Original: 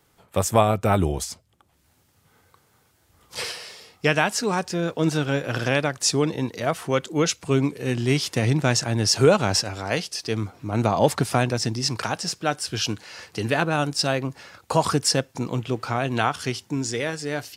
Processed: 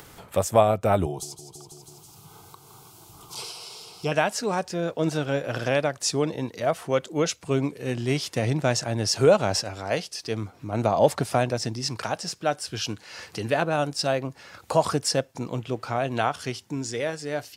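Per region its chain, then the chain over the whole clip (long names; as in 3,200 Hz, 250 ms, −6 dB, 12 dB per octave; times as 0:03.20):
0:01.06–0:04.12: phaser with its sweep stopped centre 360 Hz, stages 8 + repeating echo 164 ms, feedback 54%, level −14 dB
whole clip: dynamic equaliser 610 Hz, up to +7 dB, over −37 dBFS, Q 2; upward compression, threshold −27 dBFS; level −4.5 dB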